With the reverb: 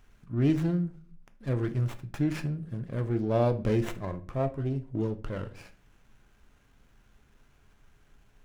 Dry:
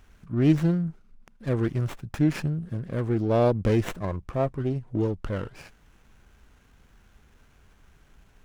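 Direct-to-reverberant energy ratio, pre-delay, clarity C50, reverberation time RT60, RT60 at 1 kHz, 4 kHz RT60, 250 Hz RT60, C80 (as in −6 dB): 9.0 dB, 3 ms, 15.5 dB, 0.40 s, 0.35 s, 0.30 s, 0.60 s, 20.5 dB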